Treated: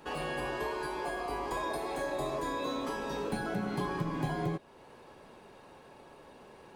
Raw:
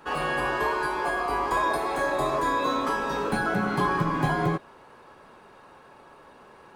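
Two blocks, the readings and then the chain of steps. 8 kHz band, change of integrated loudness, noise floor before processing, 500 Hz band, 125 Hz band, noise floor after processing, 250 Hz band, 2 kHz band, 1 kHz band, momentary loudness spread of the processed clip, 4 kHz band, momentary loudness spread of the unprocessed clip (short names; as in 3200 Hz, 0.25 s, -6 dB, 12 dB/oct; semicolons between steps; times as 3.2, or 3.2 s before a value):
-6.0 dB, -9.0 dB, -52 dBFS, -7.0 dB, -7.0 dB, -55 dBFS, -6.5 dB, -11.5 dB, -11.0 dB, 20 LU, -6.5 dB, 2 LU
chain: bell 1300 Hz -9 dB 1 oct; compressor 1.5:1, threshold -42 dBFS, peak gain reduction 8 dB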